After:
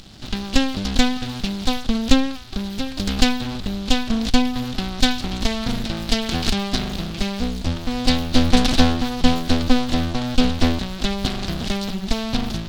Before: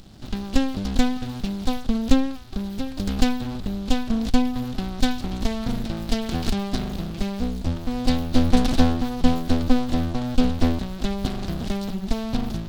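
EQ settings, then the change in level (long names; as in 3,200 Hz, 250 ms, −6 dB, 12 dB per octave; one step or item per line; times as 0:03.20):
parametric band 3,600 Hz +8.5 dB 2.9 octaves
+1.5 dB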